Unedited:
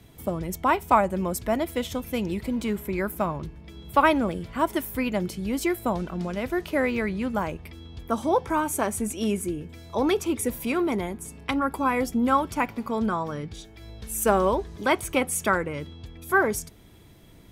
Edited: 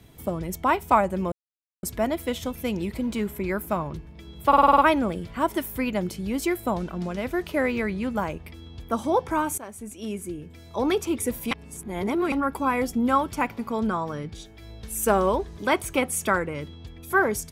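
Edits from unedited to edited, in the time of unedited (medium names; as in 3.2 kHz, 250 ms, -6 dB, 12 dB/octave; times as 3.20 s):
1.32 s: insert silence 0.51 s
3.97 s: stutter 0.05 s, 7 plays
8.77–10.18 s: fade in, from -15.5 dB
10.70–11.51 s: reverse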